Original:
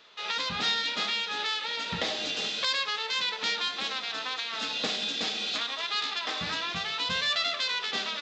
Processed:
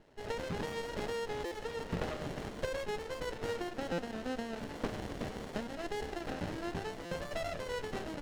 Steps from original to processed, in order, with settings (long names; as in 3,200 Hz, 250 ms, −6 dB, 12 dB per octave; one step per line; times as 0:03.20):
loose part that buzzes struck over −47 dBFS, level −22 dBFS
pitch vibrato 0.35 Hz 8.1 cents
low-pass filter 1,900 Hz 12 dB per octave
hum removal 349.6 Hz, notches 4
buffer that repeats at 0:01.45/0:03.92/0:07.05, samples 256, times 10
windowed peak hold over 33 samples